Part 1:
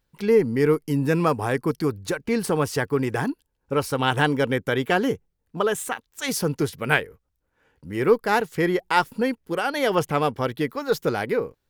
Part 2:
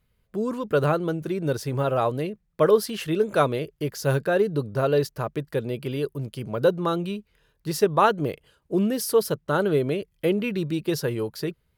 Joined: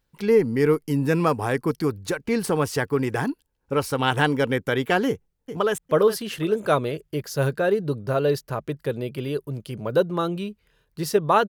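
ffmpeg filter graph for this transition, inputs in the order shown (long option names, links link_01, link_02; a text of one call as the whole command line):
ffmpeg -i cue0.wav -i cue1.wav -filter_complex "[0:a]apad=whole_dur=11.48,atrim=end=11.48,atrim=end=5.782[link_01];[1:a]atrim=start=2.458:end=8.16[link_02];[link_01][link_02]acrossfade=duration=0.004:curve1=hsin:curve2=hsin,asplit=2[link_03][link_04];[link_04]afade=type=in:start_time=5.07:duration=0.01,afade=type=out:start_time=5.78:duration=0.01,aecho=0:1:410|820|1230:0.298538|0.0895615|0.0268684[link_05];[link_03][link_05]amix=inputs=2:normalize=0" out.wav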